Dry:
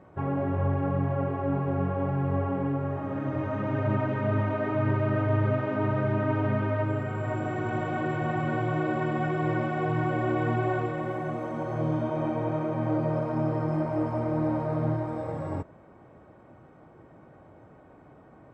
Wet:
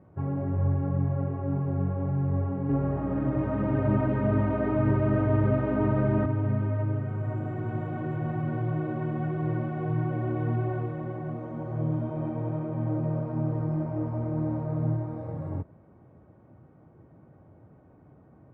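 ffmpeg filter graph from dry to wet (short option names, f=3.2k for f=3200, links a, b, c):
-filter_complex "[0:a]asettb=1/sr,asplit=3[a][b][c];[a]atrim=end=2.694[d];[b]atrim=start=2.69:end=6.26,asetpts=PTS-STARTPTS,afade=t=in:d=0.004:c=qsin,afade=t=out:st=3.566:d=0.004:c=qsin,highpass=170,acontrast=83,aeval=exprs='val(0)+0.0141*(sin(2*PI*60*n/s)+sin(2*PI*2*60*n/s)/2+sin(2*PI*3*60*n/s)/3+sin(2*PI*4*60*n/s)/4+sin(2*PI*5*60*n/s)/5)':c=same[e];[c]atrim=start=6.256[f];[d][e]acrossfade=d=0.004:c1=hsin:c2=qsin[g];[g][f]acrossfade=d=0.004:c1=qsin:c2=hsin,highpass=90,aemphasis=mode=reproduction:type=riaa,volume=-8.5dB"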